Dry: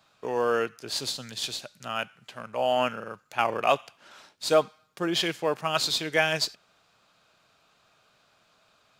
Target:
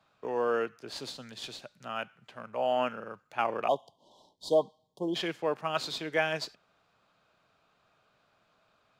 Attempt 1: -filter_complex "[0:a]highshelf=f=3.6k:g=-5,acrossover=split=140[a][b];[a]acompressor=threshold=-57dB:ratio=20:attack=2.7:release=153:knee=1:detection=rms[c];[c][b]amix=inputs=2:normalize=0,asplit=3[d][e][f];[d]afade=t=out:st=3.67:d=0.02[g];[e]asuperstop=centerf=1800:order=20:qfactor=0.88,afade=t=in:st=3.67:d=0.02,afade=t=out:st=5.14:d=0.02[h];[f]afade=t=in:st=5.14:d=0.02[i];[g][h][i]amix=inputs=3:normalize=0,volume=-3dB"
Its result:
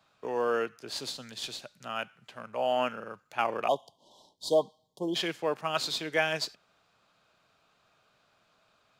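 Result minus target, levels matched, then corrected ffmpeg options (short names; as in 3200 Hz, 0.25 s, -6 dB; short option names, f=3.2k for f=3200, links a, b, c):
8000 Hz band +5.0 dB
-filter_complex "[0:a]highshelf=f=3.6k:g=-12.5,acrossover=split=140[a][b];[a]acompressor=threshold=-57dB:ratio=20:attack=2.7:release=153:knee=1:detection=rms[c];[c][b]amix=inputs=2:normalize=0,asplit=3[d][e][f];[d]afade=t=out:st=3.67:d=0.02[g];[e]asuperstop=centerf=1800:order=20:qfactor=0.88,afade=t=in:st=3.67:d=0.02,afade=t=out:st=5.14:d=0.02[h];[f]afade=t=in:st=5.14:d=0.02[i];[g][h][i]amix=inputs=3:normalize=0,volume=-3dB"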